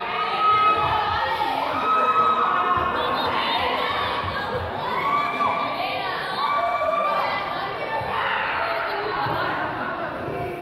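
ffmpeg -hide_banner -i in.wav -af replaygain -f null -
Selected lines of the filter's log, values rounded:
track_gain = +4.2 dB
track_peak = 0.263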